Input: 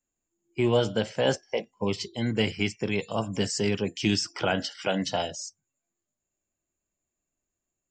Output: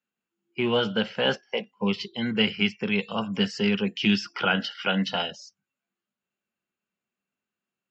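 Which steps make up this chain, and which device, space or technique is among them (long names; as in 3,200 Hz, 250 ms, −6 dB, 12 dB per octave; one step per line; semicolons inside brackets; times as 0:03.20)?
kitchen radio (loudspeaker in its box 190–4,500 Hz, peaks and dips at 200 Hz +8 dB, 310 Hz −9 dB, 630 Hz −7 dB, 1,400 Hz +7 dB, 2,800 Hz +6 dB)
level +1.5 dB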